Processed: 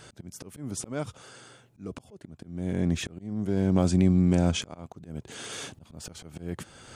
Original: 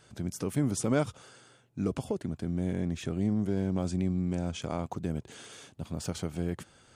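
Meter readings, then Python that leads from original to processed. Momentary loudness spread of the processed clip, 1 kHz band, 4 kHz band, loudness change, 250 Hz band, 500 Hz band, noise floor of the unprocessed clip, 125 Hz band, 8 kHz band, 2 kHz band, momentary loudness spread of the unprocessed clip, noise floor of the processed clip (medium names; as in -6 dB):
21 LU, +0.5 dB, +6.5 dB, +5.0 dB, +3.0 dB, +1.0 dB, -61 dBFS, +3.5 dB, +3.0 dB, +3.0 dB, 11 LU, -60 dBFS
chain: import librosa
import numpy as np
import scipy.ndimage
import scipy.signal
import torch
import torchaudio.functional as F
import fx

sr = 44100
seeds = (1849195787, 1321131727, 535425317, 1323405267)

y = fx.rider(x, sr, range_db=4, speed_s=2.0)
y = fx.auto_swell(y, sr, attack_ms=593.0)
y = y * librosa.db_to_amplitude(9.0)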